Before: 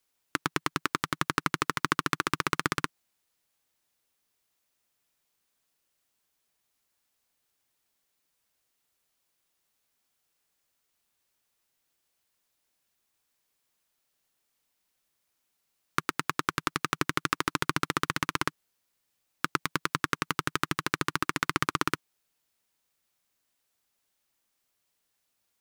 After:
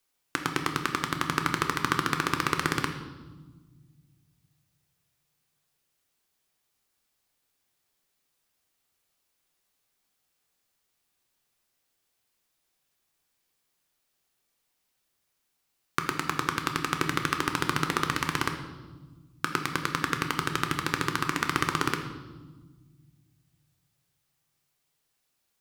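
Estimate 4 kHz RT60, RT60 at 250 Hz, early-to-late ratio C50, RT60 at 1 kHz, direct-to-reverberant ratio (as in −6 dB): 1.1 s, 2.2 s, 8.0 dB, 1.2 s, 4.5 dB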